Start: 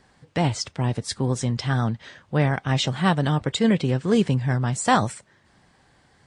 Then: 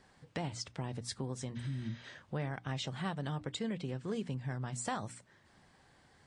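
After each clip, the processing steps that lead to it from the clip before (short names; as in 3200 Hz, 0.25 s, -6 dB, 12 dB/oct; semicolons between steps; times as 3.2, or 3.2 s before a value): spectral repair 1.58–2, 370–7600 Hz after; notches 60/120/180/240/300 Hz; compressor 3:1, threshold -33 dBFS, peak gain reduction 14.5 dB; gain -5.5 dB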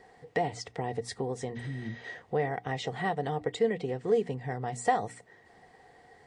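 small resonant body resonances 460/720/1900 Hz, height 17 dB, ringing for 35 ms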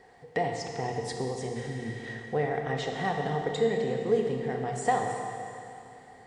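Schroeder reverb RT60 2.8 s, combs from 27 ms, DRR 2 dB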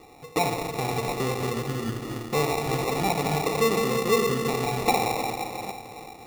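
reverse delay 0.381 s, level -12 dB; in parallel at -0.5 dB: limiter -24.5 dBFS, peak gain reduction 11 dB; on the sum: sample-and-hold 28×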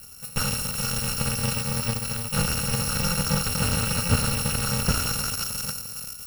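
FFT order left unsorted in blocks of 128 samples; slew limiter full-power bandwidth 200 Hz; gain +5.5 dB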